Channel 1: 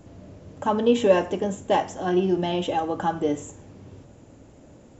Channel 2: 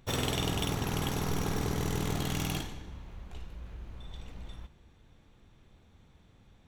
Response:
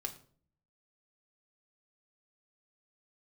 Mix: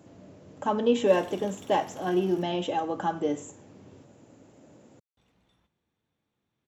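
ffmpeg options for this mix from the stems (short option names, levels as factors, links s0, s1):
-filter_complex "[0:a]volume=0.668[s0];[1:a]adelay=1000,volume=0.15,asplit=3[s1][s2][s3];[s1]atrim=end=2.43,asetpts=PTS-STARTPTS,afade=t=out:st=2.426:d=0.004:c=hsin[s4];[s2]atrim=start=2.43:end=5.17,asetpts=PTS-STARTPTS,volume=0[s5];[s3]atrim=start=5.17,asetpts=PTS-STARTPTS,afade=t=in:d=0.004:c=hsin[s6];[s4][s5][s6]concat=n=3:v=0:a=1[s7];[s0][s7]amix=inputs=2:normalize=0,highpass=140"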